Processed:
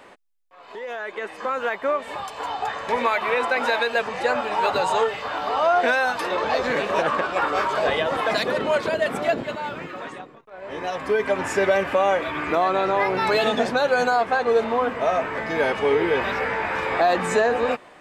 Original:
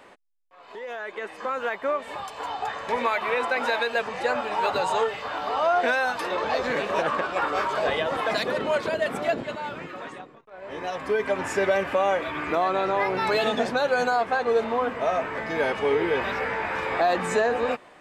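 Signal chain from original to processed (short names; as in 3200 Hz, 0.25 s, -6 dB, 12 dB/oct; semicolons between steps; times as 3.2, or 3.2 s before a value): 9.3–10.02 median filter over 3 samples; gain +3 dB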